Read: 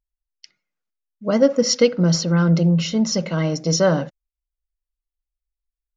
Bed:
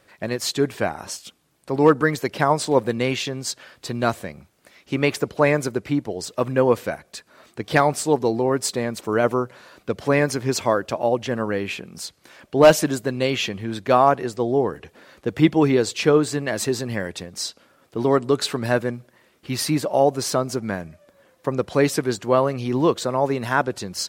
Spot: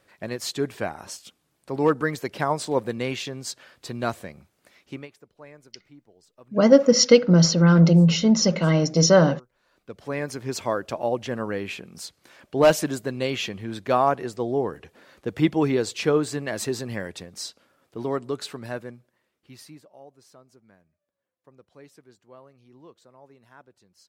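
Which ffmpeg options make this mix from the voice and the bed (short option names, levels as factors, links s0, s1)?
-filter_complex "[0:a]adelay=5300,volume=1.19[s0];[1:a]volume=8.41,afade=t=out:st=4.77:d=0.31:silence=0.0707946,afade=t=in:st=9.52:d=1.39:silence=0.0630957,afade=t=out:st=16.89:d=3:silence=0.0501187[s1];[s0][s1]amix=inputs=2:normalize=0"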